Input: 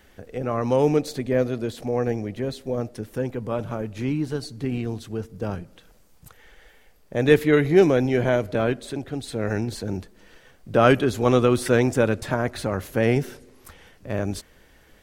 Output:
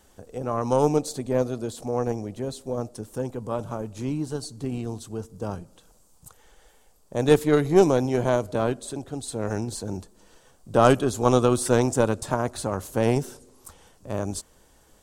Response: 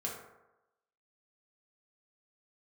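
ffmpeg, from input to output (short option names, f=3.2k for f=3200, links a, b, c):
-af "aeval=exprs='0.891*(cos(1*acos(clip(val(0)/0.891,-1,1)))-cos(1*PI/2))+0.158*(cos(2*acos(clip(val(0)/0.891,-1,1)))-cos(2*PI/2))+0.0562*(cos(5*acos(clip(val(0)/0.891,-1,1)))-cos(5*PI/2))+0.0562*(cos(7*acos(clip(val(0)/0.891,-1,1)))-cos(7*PI/2))':c=same,equalizer=f=1k:t=o:w=1:g=6,equalizer=f=2k:t=o:w=1:g=-10,equalizer=f=8k:t=o:w=1:g=11,volume=-2.5dB"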